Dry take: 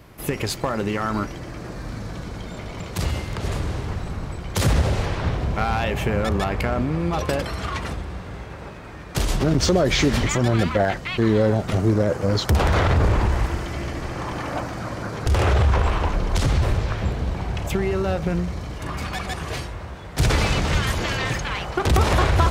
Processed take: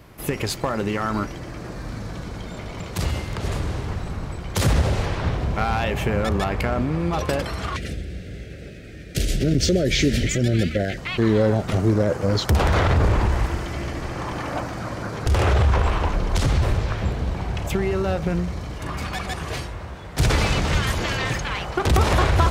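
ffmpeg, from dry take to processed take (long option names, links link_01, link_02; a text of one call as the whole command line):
ffmpeg -i in.wav -filter_complex "[0:a]asettb=1/sr,asplit=3[link_01][link_02][link_03];[link_01]atrim=end=7.764[link_04];[link_02]atrim=start=7.76:end=10.98,asetpts=PTS-STARTPTS,afade=type=in:duration=0.004:curve=qsin,afade=type=out:start_time=3.216:duration=0.004:curve=qsin,asuperstop=centerf=990:order=4:qfactor=0.79[link_05];[link_03]atrim=start=10.976[link_06];[link_04][link_05]acrossfade=duration=0.004:curve1=hsin:curve2=qsin[link_07];[link_07][link_06]acrossfade=duration=0.004:curve1=qsin:curve2=hsin" out.wav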